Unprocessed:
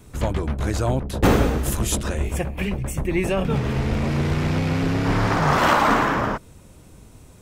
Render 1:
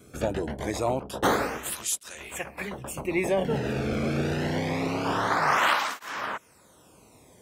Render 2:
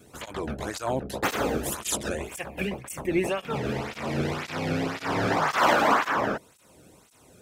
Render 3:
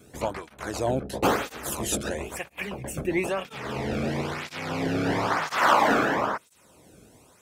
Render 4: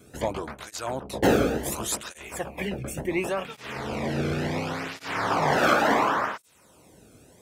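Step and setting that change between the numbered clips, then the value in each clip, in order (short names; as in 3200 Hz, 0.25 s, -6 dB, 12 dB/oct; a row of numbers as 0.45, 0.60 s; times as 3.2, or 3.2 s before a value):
tape flanging out of phase, nulls at: 0.25, 1.9, 1, 0.7 Hz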